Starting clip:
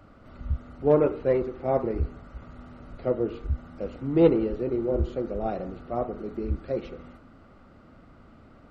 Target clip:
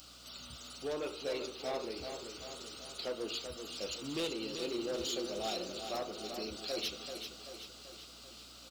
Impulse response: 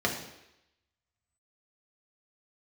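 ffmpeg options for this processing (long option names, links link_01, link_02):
-af "highpass=190,tiltshelf=frequency=890:gain=-6,alimiter=limit=-20.5dB:level=0:latency=1:release=403,flanger=delay=3.9:depth=8.3:regen=-78:speed=0.3:shape=sinusoidal,aeval=exprs='val(0)+0.000794*(sin(2*PI*60*n/s)+sin(2*PI*2*60*n/s)/2+sin(2*PI*3*60*n/s)/3+sin(2*PI*4*60*n/s)/4+sin(2*PI*5*60*n/s)/5)':channel_layout=same,aexciter=amount=15.1:drive=5.1:freq=3000,volume=31dB,asoftclip=hard,volume=-31dB,aecho=1:1:386|772|1158|1544|1930|2316|2702:0.422|0.236|0.132|0.0741|0.0415|0.0232|0.013,volume=-1.5dB"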